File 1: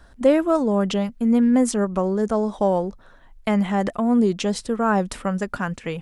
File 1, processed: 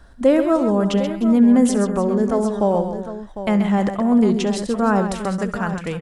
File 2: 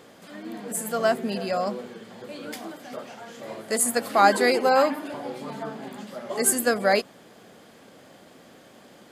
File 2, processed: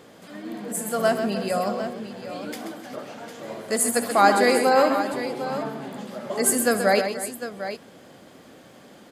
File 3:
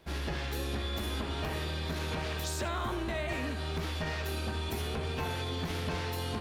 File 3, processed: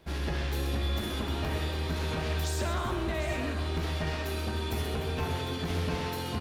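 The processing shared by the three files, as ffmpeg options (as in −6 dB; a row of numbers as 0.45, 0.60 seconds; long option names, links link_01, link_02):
-af "lowshelf=frequency=390:gain=3,aecho=1:1:67|131|304|753:0.168|0.376|0.168|0.266"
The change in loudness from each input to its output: +3.0, +1.0, +2.5 LU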